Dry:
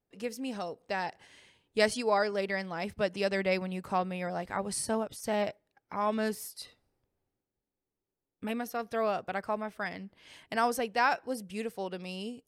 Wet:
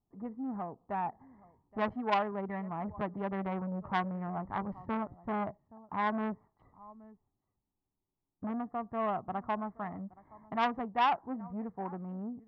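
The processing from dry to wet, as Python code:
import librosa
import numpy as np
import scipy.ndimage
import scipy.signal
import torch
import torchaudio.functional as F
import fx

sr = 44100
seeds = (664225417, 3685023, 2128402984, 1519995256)

y = fx.wiener(x, sr, points=15)
y = scipy.signal.sosfilt(scipy.signal.butter(4, 1300.0, 'lowpass', fs=sr, output='sos'), y)
y = y + 0.68 * np.pad(y, (int(1.0 * sr / 1000.0), 0))[:len(y)]
y = y + 10.0 ** (-23.0 / 20.0) * np.pad(y, (int(822 * sr / 1000.0), 0))[:len(y)]
y = fx.transformer_sat(y, sr, knee_hz=1600.0)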